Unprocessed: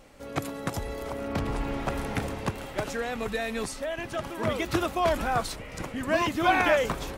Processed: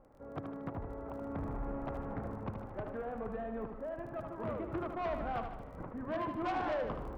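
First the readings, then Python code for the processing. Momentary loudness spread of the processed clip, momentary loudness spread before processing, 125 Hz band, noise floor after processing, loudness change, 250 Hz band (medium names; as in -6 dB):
8 LU, 11 LU, -8.5 dB, -48 dBFS, -10.5 dB, -8.5 dB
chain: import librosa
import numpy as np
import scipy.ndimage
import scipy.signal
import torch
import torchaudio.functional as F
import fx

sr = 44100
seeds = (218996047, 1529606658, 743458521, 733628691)

p1 = scipy.signal.sosfilt(scipy.signal.butter(4, 1300.0, 'lowpass', fs=sr, output='sos'), x)
p2 = fx.dmg_crackle(p1, sr, seeds[0], per_s=19.0, level_db=-42.0)
p3 = 10.0 ** (-24.5 / 20.0) * np.tanh(p2 / 10.0 ** (-24.5 / 20.0))
p4 = p3 + fx.echo_feedback(p3, sr, ms=76, feedback_pct=53, wet_db=-7, dry=0)
y = F.gain(torch.from_numpy(p4), -7.5).numpy()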